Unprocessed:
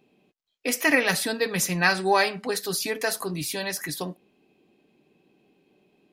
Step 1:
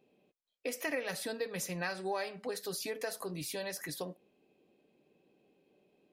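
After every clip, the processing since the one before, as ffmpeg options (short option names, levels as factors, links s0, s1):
-af "equalizer=f=530:t=o:w=0.57:g=8.5,acompressor=threshold=0.0398:ratio=2.5,volume=0.376"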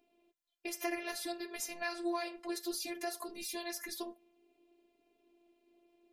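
-af "afftfilt=real='hypot(re,im)*cos(PI*b)':imag='0':win_size=512:overlap=0.75,flanger=delay=4.2:depth=4.5:regen=-50:speed=0.59:shape=sinusoidal,volume=2.24"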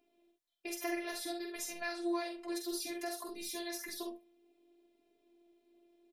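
-af "aecho=1:1:47|67:0.531|0.316,volume=0.794"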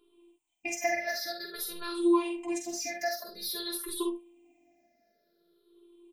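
-af "afftfilt=real='re*pow(10,23/40*sin(2*PI*(0.64*log(max(b,1)*sr/1024/100)/log(2)-(-0.51)*(pts-256)/sr)))':imag='im*pow(10,23/40*sin(2*PI*(0.64*log(max(b,1)*sr/1024/100)/log(2)-(-0.51)*(pts-256)/sr)))':win_size=1024:overlap=0.75,volume=1.12"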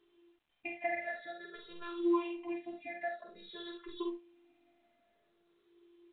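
-af "volume=0.501" -ar 8000 -c:a pcm_mulaw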